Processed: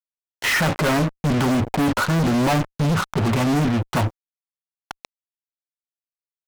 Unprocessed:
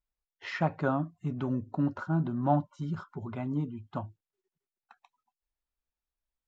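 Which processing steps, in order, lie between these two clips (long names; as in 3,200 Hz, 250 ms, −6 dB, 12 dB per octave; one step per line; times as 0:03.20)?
fuzz pedal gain 51 dB, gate −47 dBFS
level −4 dB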